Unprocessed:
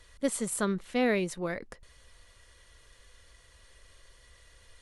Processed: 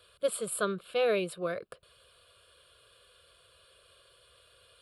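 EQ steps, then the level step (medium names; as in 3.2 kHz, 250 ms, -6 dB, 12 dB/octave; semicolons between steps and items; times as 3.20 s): high-pass 150 Hz 12 dB/octave; static phaser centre 1.3 kHz, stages 8; +3.0 dB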